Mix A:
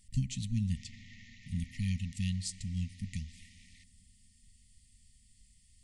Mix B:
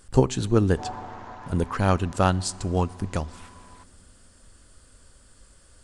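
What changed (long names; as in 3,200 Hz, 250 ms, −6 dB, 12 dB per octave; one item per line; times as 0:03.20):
speech +9.0 dB
master: remove linear-phase brick-wall band-stop 250–1,800 Hz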